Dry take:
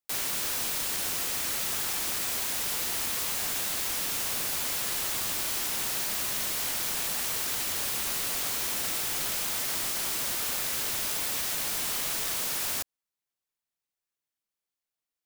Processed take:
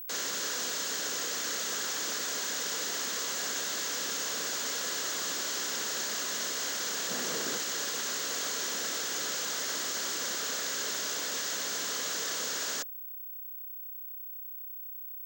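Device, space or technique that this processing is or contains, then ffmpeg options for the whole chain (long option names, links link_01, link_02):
old television with a line whistle: -filter_complex "[0:a]highpass=frequency=200:width=0.5412,highpass=frequency=200:width=1.3066,equalizer=frequency=470:width_type=q:width=4:gain=5,equalizer=frequency=830:width_type=q:width=4:gain=-6,equalizer=frequency=1600:width_type=q:width=4:gain=4,equalizer=frequency=2400:width_type=q:width=4:gain=-7,equalizer=frequency=6700:width_type=q:width=4:gain=7,lowpass=frequency=6900:width=0.5412,lowpass=frequency=6900:width=1.3066,aeval=exprs='val(0)+0.0112*sin(2*PI*15734*n/s)':channel_layout=same,asettb=1/sr,asplit=3[link_01][link_02][link_03];[link_01]atrim=end=7.104[link_04];[link_02]atrim=start=7.1:end=7.58,asetpts=PTS-STARTPTS,afade=type=in:duration=0.004:curve=qsin,afade=type=out:start_time=0.476:duration=0.004:curve=qsin,lowshelf=frequency=440:gain=11.5[link_05];[link_03]atrim=start=7.576[link_06];[link_04][link_05]acrossfade=duration=0.004:curve1=hsin:curve2=qsin[link_07];[link_07][link_06]acrossfade=duration=0.004:curve1=qsin:curve2=hsin"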